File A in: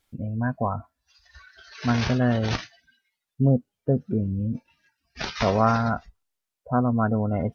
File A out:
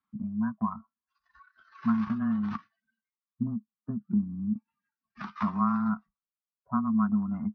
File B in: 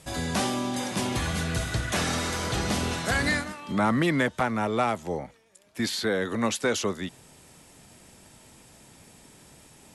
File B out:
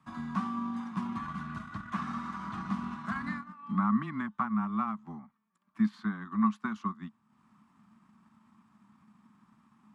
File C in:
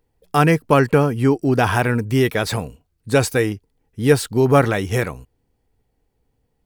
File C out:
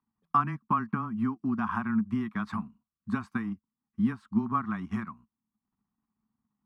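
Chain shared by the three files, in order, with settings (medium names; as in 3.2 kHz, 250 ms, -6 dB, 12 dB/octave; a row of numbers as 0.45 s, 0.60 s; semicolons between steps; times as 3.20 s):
compression 2.5:1, threshold -18 dBFS; frequency shift -13 Hz; dynamic bell 530 Hz, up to -4 dB, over -34 dBFS, Q 2.3; transient shaper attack +4 dB, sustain -8 dB; two resonant band-passes 490 Hz, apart 2.4 oct; trim +2.5 dB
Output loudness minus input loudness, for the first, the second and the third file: -5.5 LU, -6.5 LU, -12.5 LU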